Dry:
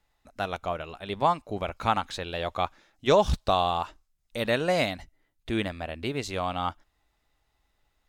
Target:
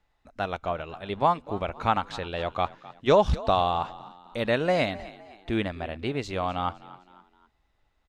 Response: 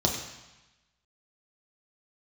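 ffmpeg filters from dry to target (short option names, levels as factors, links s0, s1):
-filter_complex "[0:a]aemphasis=mode=reproduction:type=50fm,asplit=4[s0][s1][s2][s3];[s1]adelay=257,afreqshift=47,volume=0.119[s4];[s2]adelay=514,afreqshift=94,volume=0.0501[s5];[s3]adelay=771,afreqshift=141,volume=0.0209[s6];[s0][s4][s5][s6]amix=inputs=4:normalize=0,volume=1.12"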